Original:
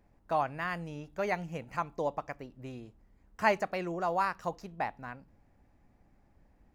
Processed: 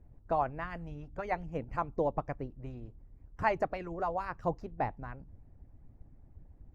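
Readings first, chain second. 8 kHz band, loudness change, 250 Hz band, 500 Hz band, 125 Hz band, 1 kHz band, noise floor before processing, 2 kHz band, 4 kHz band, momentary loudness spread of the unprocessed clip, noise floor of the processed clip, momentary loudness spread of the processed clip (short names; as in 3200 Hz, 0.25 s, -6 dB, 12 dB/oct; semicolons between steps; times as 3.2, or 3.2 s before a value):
under -10 dB, -2.0 dB, -1.0 dB, -0.5 dB, +2.0 dB, -1.5 dB, -67 dBFS, -5.0 dB, -9.5 dB, 16 LU, -58 dBFS, 14 LU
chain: tilt -4.5 dB/oct; harmonic-percussive split harmonic -14 dB; bell 200 Hz -7 dB 0.24 oct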